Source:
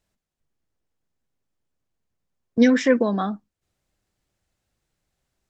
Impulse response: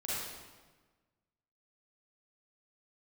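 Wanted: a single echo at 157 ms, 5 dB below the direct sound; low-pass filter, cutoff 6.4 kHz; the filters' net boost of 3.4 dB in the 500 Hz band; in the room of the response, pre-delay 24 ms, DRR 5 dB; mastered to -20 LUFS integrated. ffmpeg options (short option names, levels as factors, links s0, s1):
-filter_complex "[0:a]lowpass=6400,equalizer=f=500:t=o:g=3.5,aecho=1:1:157:0.562,asplit=2[s0][s1];[1:a]atrim=start_sample=2205,adelay=24[s2];[s1][s2]afir=irnorm=-1:irlink=0,volume=0.355[s3];[s0][s3]amix=inputs=2:normalize=0,volume=0.75"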